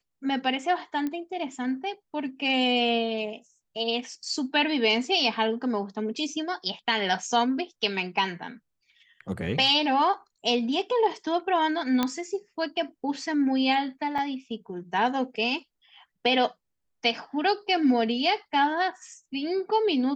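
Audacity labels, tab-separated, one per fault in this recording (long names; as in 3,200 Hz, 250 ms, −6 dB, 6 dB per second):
1.070000	1.070000	click −19 dBFS
12.030000	12.030000	click −10 dBFS
14.180000	14.180000	drop-out 4.5 ms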